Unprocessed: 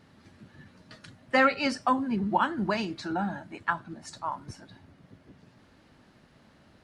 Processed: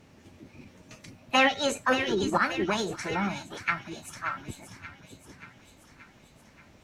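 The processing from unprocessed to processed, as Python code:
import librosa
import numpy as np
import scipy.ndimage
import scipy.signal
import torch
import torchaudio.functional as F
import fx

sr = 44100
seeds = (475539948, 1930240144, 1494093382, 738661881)

y = fx.low_shelf(x, sr, hz=100.0, db=8.0)
y = fx.echo_wet_highpass(y, sr, ms=580, feedback_pct=60, hz=1600.0, wet_db=-9.0)
y = fx.formant_shift(y, sr, semitones=6)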